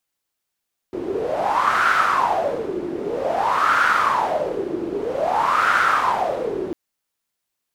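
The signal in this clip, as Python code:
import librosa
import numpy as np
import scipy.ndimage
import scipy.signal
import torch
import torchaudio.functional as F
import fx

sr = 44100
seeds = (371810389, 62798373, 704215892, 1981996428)

y = fx.wind(sr, seeds[0], length_s=5.8, low_hz=350.0, high_hz=1400.0, q=7.4, gusts=3, swing_db=9.0)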